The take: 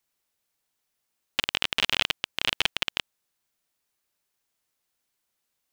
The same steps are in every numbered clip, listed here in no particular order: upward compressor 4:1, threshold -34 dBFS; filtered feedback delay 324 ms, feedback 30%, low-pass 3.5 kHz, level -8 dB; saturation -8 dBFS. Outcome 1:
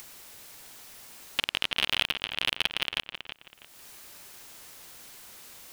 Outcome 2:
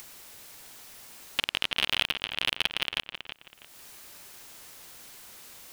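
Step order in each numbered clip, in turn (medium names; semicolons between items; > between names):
upward compressor > saturation > filtered feedback delay; saturation > upward compressor > filtered feedback delay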